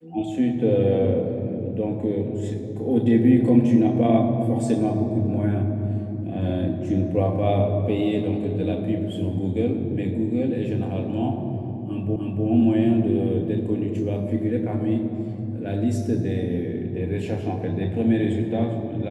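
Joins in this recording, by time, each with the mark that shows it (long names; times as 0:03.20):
0:12.16: the same again, the last 0.3 s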